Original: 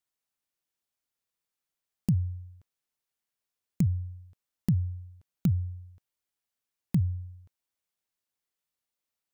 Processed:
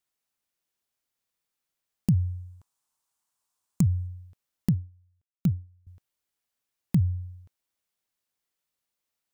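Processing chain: 2.14–4.07 s: graphic EQ 500/1000/2000/8000 Hz -4/+11/-5/+8 dB; 4.69–5.87 s: upward expansion 2.5:1, over -35 dBFS; trim +3 dB

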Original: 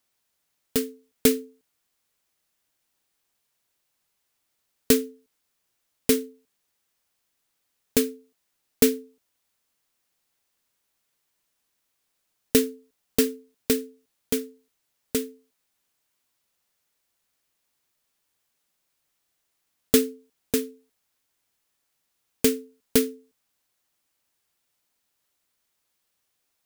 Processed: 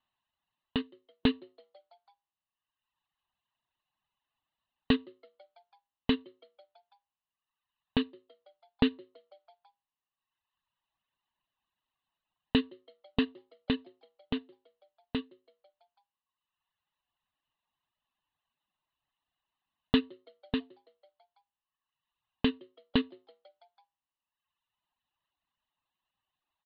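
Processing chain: in parallel at -12 dB: crossover distortion -34 dBFS; on the sum: rippled Chebyshev low-pass 4.2 kHz, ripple 9 dB; comb 1.1 ms, depth 61%; on a send: frequency-shifting echo 165 ms, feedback 64%, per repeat +110 Hz, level -22 dB; on the sum: reverb removal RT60 1.5 s; bass shelf 340 Hz +3.5 dB

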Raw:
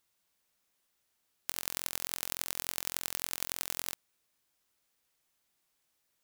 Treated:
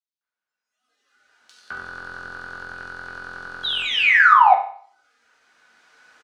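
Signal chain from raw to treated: recorder AGC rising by 8.3 dB/s; de-hum 387.8 Hz, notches 31; spectral noise reduction 21 dB; peaking EQ 1.5 kHz +13 dB 0.22 oct; painted sound fall, 3.64–4.33 s, 700–4000 Hz -3 dBFS; harmony voices -3 st -17 dB; overdrive pedal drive 25 dB, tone 2.2 kHz, clips at -13 dBFS; distance through air 100 m; bands offset in time highs, lows 210 ms, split 3.3 kHz; reverberation RT60 0.50 s, pre-delay 4 ms, DRR -0.5 dB; trim -6 dB

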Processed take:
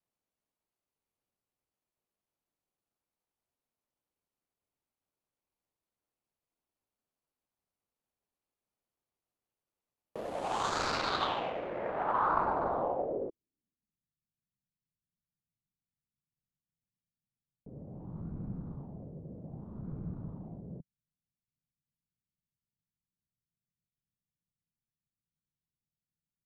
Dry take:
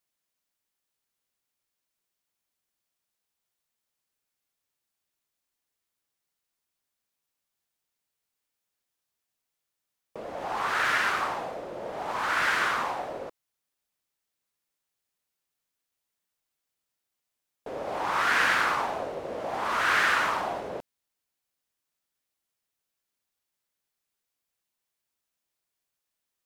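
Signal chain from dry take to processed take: median filter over 25 samples; low-pass sweep 12 kHz -> 160 Hz, 10.21–14.04 s

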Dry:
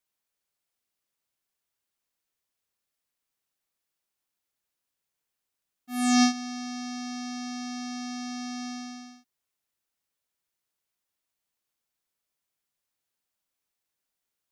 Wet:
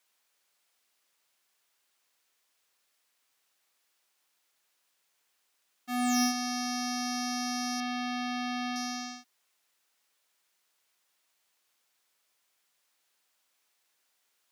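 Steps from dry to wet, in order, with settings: overdrive pedal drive 25 dB, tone 7.5 kHz, clips at -11 dBFS; 7.80–8.76 s: resonant high shelf 4.8 kHz -13 dB, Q 1.5; trim -6.5 dB

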